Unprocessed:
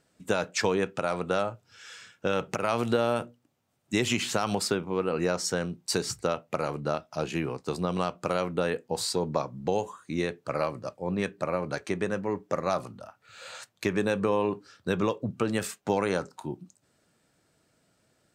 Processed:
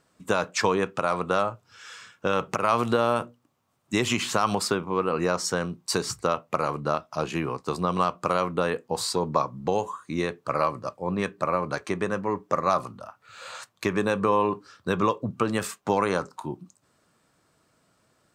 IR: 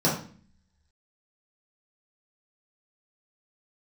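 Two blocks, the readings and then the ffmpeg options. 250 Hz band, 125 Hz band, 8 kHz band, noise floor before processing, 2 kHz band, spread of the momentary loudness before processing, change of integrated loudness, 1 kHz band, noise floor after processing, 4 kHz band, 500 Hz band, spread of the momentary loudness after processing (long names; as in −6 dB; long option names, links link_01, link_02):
+1.5 dB, +1.5 dB, +1.5 dB, −71 dBFS, +3.0 dB, 9 LU, +3.0 dB, +7.0 dB, −68 dBFS, +1.5 dB, +2.0 dB, 10 LU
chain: -af "equalizer=frequency=1100:width=3.1:gain=9.5,volume=1.5dB"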